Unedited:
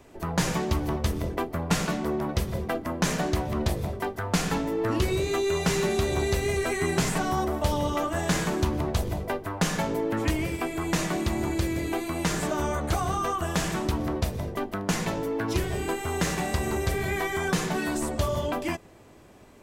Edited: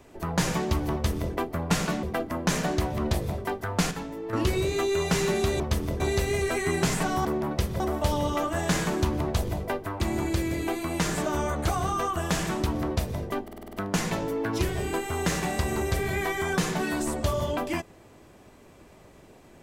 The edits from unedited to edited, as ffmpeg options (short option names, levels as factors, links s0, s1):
-filter_complex "[0:a]asplit=15[s0][s1][s2][s3][s4][s5][s6][s7][s8][s9][s10][s11][s12][s13][s14];[s0]atrim=end=2.032[s15];[s1]atrim=start=2.578:end=4.462[s16];[s2]atrim=start=4.458:end=4.882,asetpts=PTS-STARTPTS,volume=0.398[s17];[s3]atrim=start=4.878:end=6.152[s18];[s4]atrim=start=0.928:end=1.332[s19];[s5]atrim=start=6.148:end=7.402[s20];[s6]atrim=start=2.028:end=2.582[s21];[s7]atrim=start=7.398:end=9.602[s22];[s8]atrim=start=11.248:end=14.732[s23];[s9]atrim=start=14.678:end=14.732[s24];[s10]atrim=start=14.678:end=14.732[s25];[s11]atrim=start=14.678:end=14.732[s26];[s12]atrim=start=14.678:end=14.732[s27];[s13]atrim=start=14.678:end=14.732[s28];[s14]atrim=start=14.678[s29];[s15][s16]acrossfade=d=0.004:c1=hsin:c2=hsin[s30];[s30][s17]acrossfade=d=0.004:c1=hsin:c2=hsin[s31];[s31][s18]acrossfade=d=0.004:c1=hsin:c2=hsin[s32];[s32][s19]acrossfade=d=0.004:c1=hsin:c2=hsin[s33];[s33][s20]acrossfade=d=0.004:c1=hsin:c2=hsin[s34];[s34][s21]acrossfade=d=0.004:c1=hsin:c2=hsin[s35];[s35][s22]acrossfade=d=0.004:c1=hsin:c2=hsin[s36];[s36][s23]acrossfade=d=0.004:c1=hsin:c2=hsin[s37];[s37][s24]acrossfade=d=0.004:c1=hsin:c2=hsin[s38];[s38][s25]acrossfade=d=0.004:c1=hsin:c2=hsin[s39];[s39][s26]acrossfade=d=0.004:c1=hsin:c2=hsin[s40];[s40][s27]acrossfade=d=0.004:c1=hsin:c2=hsin[s41];[s41][s28]acrossfade=d=0.004:c1=hsin:c2=hsin[s42];[s42][s29]acrossfade=d=0.004:c1=hsin:c2=hsin"